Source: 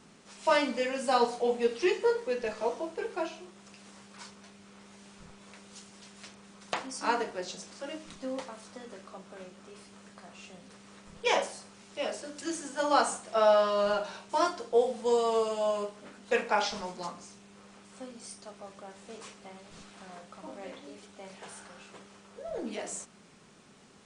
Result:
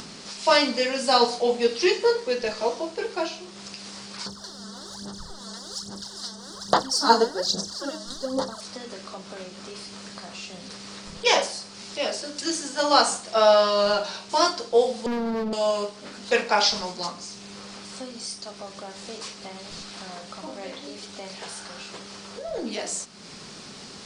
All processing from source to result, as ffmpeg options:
ffmpeg -i in.wav -filter_complex "[0:a]asettb=1/sr,asplit=3[link_01][link_02][link_03];[link_01]atrim=end=4.264[link_04];[link_02]atrim=start=4.26:end=8.61,asetpts=PTS-STARTPTS,afade=type=in:duration=0.004:curve=qsin,afade=type=out:start_time=4.346:duration=0.004:curve=qsin,aphaser=in_gain=1:out_gain=1:delay=4.6:decay=0.72:speed=1.2:type=sinusoidal,asuperstop=centerf=2400:order=4:qfactor=1.4[link_05];[link_03]atrim=start=8.606[link_06];[link_04][link_05]acrossfade=duration=0.004:curve1=hsin:curve2=qsin[link_07];[link_07][link_06]acrossfade=duration=0.004:curve1=qsin:curve2=hsin,asettb=1/sr,asplit=3[link_08][link_09][link_10];[link_08]atrim=end=15.064[link_11];[link_09]atrim=start=15.06:end=15.53,asetpts=PTS-STARTPTS,afade=type=in:duration=0.004:curve=qsin,afade=type=out:start_time=0.466:duration=0.004:curve=qsin,acontrast=45,lowpass=frequency=250:width_type=q:width=3.1,volume=30.5dB,asoftclip=hard,volume=-30.5dB[link_12];[link_10]atrim=start=15.526[link_13];[link_11][link_12]acrossfade=duration=0.004:curve1=hsin:curve2=qsin[link_14];[link_14][link_13]acrossfade=duration=0.004:curve1=qsin:curve2=hsin,equalizer=frequency=4700:width_type=o:width=0.76:gain=12,acompressor=mode=upward:threshold=-38dB:ratio=2.5,volume=5.5dB" out.wav

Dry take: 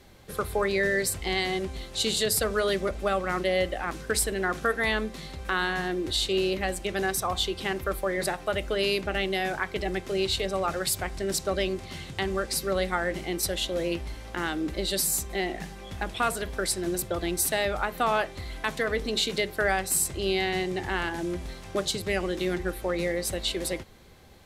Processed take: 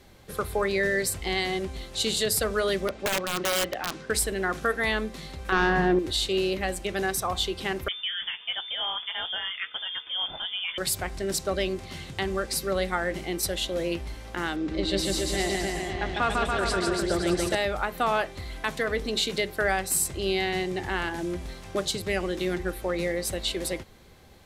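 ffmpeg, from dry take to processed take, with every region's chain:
ffmpeg -i in.wav -filter_complex "[0:a]asettb=1/sr,asplit=3[link_01][link_02][link_03];[link_01]atrim=end=2.884[link_04];[link_02]atrim=start=2.88:end=4.1,asetpts=PTS-STARTPTS,afade=type=in:duration=0.004:curve=qsin,afade=type=out:start_time=1.216:duration=0.004:curve=qsin,highpass=130,lowpass=5400,aeval=exprs='(mod(8.91*val(0)+1,2)-1)/8.91':channel_layout=same[link_05];[link_03]atrim=start=4.096[link_06];[link_04][link_05]acrossfade=duration=0.004:curve1=hsin:curve2=qsin[link_07];[link_07][link_06]acrossfade=duration=0.004:curve1=qsin:curve2=hsin,asettb=1/sr,asplit=3[link_08][link_09][link_10];[link_08]atrim=end=5.524[link_11];[link_09]atrim=start=5.52:end=5.99,asetpts=PTS-STARTPTS,afade=type=in:duration=0.004:curve=qsin,afade=type=out:start_time=0.466:duration=0.004:curve=qsin,lowpass=frequency=1100:poles=1,aeval=exprs='0.2*sin(PI/2*2*val(0)/0.2)':channel_layout=same[link_12];[link_10]atrim=start=5.986[link_13];[link_11][link_12]acrossfade=duration=0.004:curve1=hsin:curve2=qsin[link_14];[link_14][link_13]acrossfade=duration=0.004:curve1=qsin:curve2=hsin,asettb=1/sr,asplit=3[link_15][link_16][link_17];[link_15]atrim=end=7.884[link_18];[link_16]atrim=start=7.88:end=10.78,asetpts=PTS-STARTPTS,afade=type=in:duration=0.004:curve=qsin,afade=type=out:start_time=2.896:duration=0.004:curve=qsin,flanger=delay=4.5:depth=5.6:regen=-51:speed=1.3:shape=triangular,lowpass=frequency=3100:width_type=q:width=0.5098,lowpass=frequency=3100:width_type=q:width=0.6013,lowpass=frequency=3100:width_type=q:width=0.9,lowpass=frequency=3100:width_type=q:width=2.563,afreqshift=-3600[link_19];[link_17]atrim=start=10.776[link_20];[link_18][link_19]acrossfade=duration=0.004:curve1=hsin:curve2=qsin[link_21];[link_21][link_20]acrossfade=duration=0.004:curve1=qsin:curve2=hsin,asettb=1/sr,asplit=3[link_22][link_23][link_24];[link_22]atrim=end=14.564[link_25];[link_23]atrim=start=14.56:end=17.55,asetpts=PTS-STARTPTS,afade=type=in:duration=0.004:curve=qsin,afade=type=out:start_time=2.986:duration=0.004:curve=qsin,lowpass=5400,aecho=1:1:150|285|406.5|515.8|614.3|702.8:0.794|0.631|0.501|0.398|0.316|0.251,atrim=end_sample=131859[link_26];[link_24]atrim=start=17.546[link_27];[link_25][link_26]acrossfade=duration=0.004:curve1=hsin:curve2=qsin[link_28];[link_28][link_27]acrossfade=duration=0.004:curve1=qsin:curve2=hsin" out.wav

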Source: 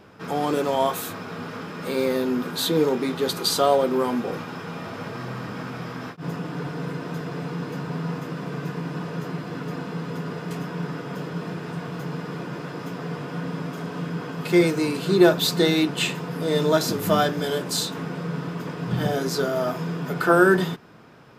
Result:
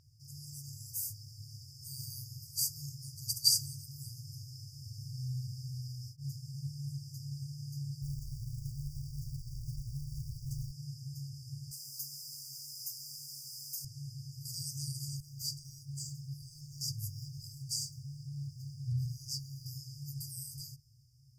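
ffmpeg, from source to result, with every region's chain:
ffmpeg -i in.wav -filter_complex "[0:a]asettb=1/sr,asplit=3[link_01][link_02][link_03];[link_01]atrim=end=8.024[link_04];[link_02]atrim=start=8.02:end=10.72,asetpts=PTS-STARTPTS,afade=type=in:duration=0.004:curve=qsin,afade=type=out:start_time=2.696:duration=0.004:curve=qsin,acrusher=bits=6:mode=log:mix=0:aa=0.000001,aeval=exprs='val(0)*sin(2*PI*310*n/s)':channel_layout=same[link_05];[link_03]atrim=start=10.716[link_06];[link_04][link_05]acrossfade=duration=0.004:curve1=hsin:curve2=qsin[link_07];[link_07][link_06]acrossfade=duration=0.004:curve1=qsin:curve2=hsin,asettb=1/sr,asplit=3[link_08][link_09][link_10];[link_08]atrim=end=11.714[link_11];[link_09]atrim=start=11.71:end=13.85,asetpts=PTS-STARTPTS,afade=type=in:duration=0.004:curve=qsin,afade=type=out:start_time=2.136:duration=0.004:curve=qsin,highpass=390,aemphasis=mode=production:type=75kf,acrusher=bits=8:mix=0:aa=0.5[link_12];[link_10]atrim=start=13.846[link_13];[link_11][link_12]acrossfade=duration=0.004:curve1=hsin:curve2=qsin[link_14];[link_14][link_13]acrossfade=duration=0.004:curve1=qsin:curve2=hsin,asettb=1/sr,asplit=3[link_15][link_16][link_17];[link_15]atrim=end=15.204[link_18];[link_16]atrim=start=15.2:end=19.66,asetpts=PTS-STARTPTS,afade=type=in:duration=0.004:curve=qsin,afade=type=out:start_time=4.456:duration=0.004:curve=qsin,lowpass=frequency=3600:poles=1,acompressor=threshold=-24dB:ratio=3:attack=3.2:release=140:knee=1:detection=peak,aeval=exprs='sgn(val(0))*max(abs(val(0))-0.00158,0)':channel_layout=same[link_19];[link_17]atrim=start=19.656[link_20];[link_18][link_19]acrossfade=duration=0.004:curve1=hsin:curve2=qsin[link_21];[link_21][link_20]acrossfade=duration=0.004:curve1=qsin:curve2=hsin,afftfilt=real='re*(1-between(b*sr/4096,150,4600))':imag='im*(1-between(b*sr/4096,150,4600))':win_size=4096:overlap=0.75,dynaudnorm=framelen=270:gausssize=9:maxgain=4dB,volume=-4.5dB" out.wav

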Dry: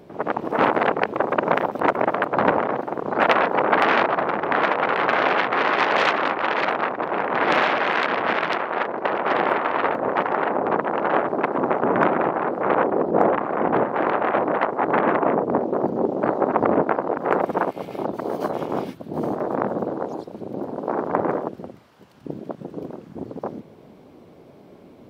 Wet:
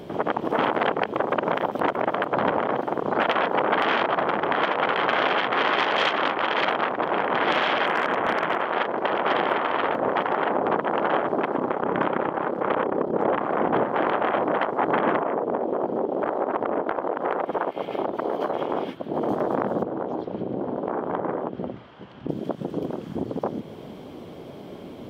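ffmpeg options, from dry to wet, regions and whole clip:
ffmpeg -i in.wav -filter_complex "[0:a]asettb=1/sr,asplit=3[link_01][link_02][link_03];[link_01]atrim=end=7.864[link_04];[link_02]atrim=start=7.86:end=8.61,asetpts=PTS-STARTPTS,afade=type=in:duration=0.004:curve=qsin,afade=type=out:start_time=0.746:duration=0.004:curve=qsin,lowpass=2300,aemphasis=mode=reproduction:type=50kf,volume=13dB,asoftclip=hard,volume=-13dB[link_05];[link_03]atrim=start=8.606[link_06];[link_04][link_05]acrossfade=duration=0.004:curve1=hsin:curve2=qsin[link_07];[link_07][link_06]acrossfade=duration=0.004:curve1=qsin:curve2=hsin,asettb=1/sr,asplit=3[link_08][link_09][link_10];[link_08]atrim=end=11.564[link_11];[link_09]atrim=start=11.56:end=13.28,asetpts=PTS-STARTPTS,afade=type=in:duration=0.004:curve=qsin,afade=type=out:start_time=1.716:duration=0.004:curve=qsin,tremolo=f=33:d=0.71,bandreject=frequency=700:width=12[link_12];[link_10]atrim=start=13.276[link_13];[link_11][link_12]acrossfade=duration=0.004:curve1=hsin:curve2=qsin[link_14];[link_14][link_13]acrossfade=duration=0.004:curve1=qsin:curve2=hsin,asettb=1/sr,asplit=3[link_15][link_16][link_17];[link_15]atrim=end=15.224[link_18];[link_16]atrim=start=15.22:end=19.29,asetpts=PTS-STARTPTS,afade=type=in:duration=0.004:curve=qsin,afade=type=out:start_time=4.066:duration=0.004:curve=qsin,bass=frequency=250:gain=-10,treble=frequency=4000:gain=-14,acompressor=threshold=-22dB:ratio=3:attack=3.2:release=140:knee=1:detection=peak[link_19];[link_17]atrim=start=19.286[link_20];[link_18][link_19]acrossfade=duration=0.004:curve1=hsin:curve2=qsin[link_21];[link_21][link_20]acrossfade=duration=0.004:curve1=qsin:curve2=hsin,asettb=1/sr,asplit=3[link_22][link_23][link_24];[link_22]atrim=end=19.834[link_25];[link_23]atrim=start=19.83:end=22.29,asetpts=PTS-STARTPTS,afade=type=in:duration=0.004:curve=qsin,afade=type=out:start_time=2.456:duration=0.004:curve=qsin,lowpass=2600,acompressor=threshold=-31dB:ratio=2:attack=3.2:release=140:knee=1:detection=peak,asplit=2[link_26][link_27];[link_27]adelay=16,volume=-12dB[link_28];[link_26][link_28]amix=inputs=2:normalize=0,atrim=end_sample=108486[link_29];[link_24]atrim=start=22.286[link_30];[link_25][link_29]acrossfade=duration=0.004:curve1=hsin:curve2=qsin[link_31];[link_31][link_30]acrossfade=duration=0.004:curve1=qsin:curve2=hsin,acompressor=threshold=-34dB:ratio=2,equalizer=frequency=3200:width_type=o:width=0.21:gain=9.5,alimiter=level_in=16dB:limit=-1dB:release=50:level=0:latency=1,volume=-8.5dB" out.wav

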